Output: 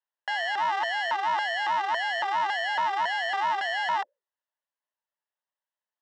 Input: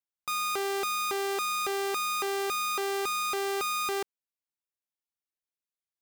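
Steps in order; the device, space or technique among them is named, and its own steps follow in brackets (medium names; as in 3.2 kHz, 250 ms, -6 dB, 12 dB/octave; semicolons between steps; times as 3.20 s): rippled EQ curve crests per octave 1.7, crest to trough 8 dB; voice changer toy (ring modulator with a swept carrier 470 Hz, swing 20%, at 4.6 Hz; cabinet simulation 600–4500 Hz, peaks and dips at 600 Hz +8 dB, 920 Hz +9 dB, 1.7 kHz +6 dB, 2.4 kHz -7 dB, 4.4 kHz -9 dB); trim +5 dB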